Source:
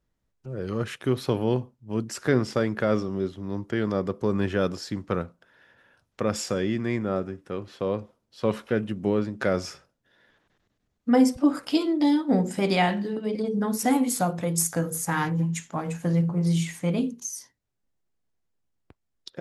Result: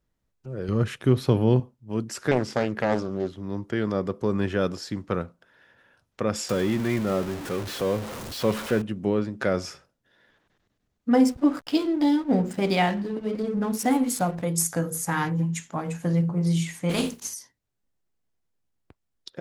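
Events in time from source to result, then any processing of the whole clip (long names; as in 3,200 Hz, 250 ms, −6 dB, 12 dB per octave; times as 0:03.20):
0:00.68–0:01.60: low-shelf EQ 220 Hz +10 dB
0:02.31–0:03.38: highs frequency-modulated by the lows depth 0.66 ms
0:06.49–0:08.82: converter with a step at zero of −30 dBFS
0:11.11–0:14.43: slack as between gear wheels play −36 dBFS
0:16.89–0:17.33: compressing power law on the bin magnitudes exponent 0.56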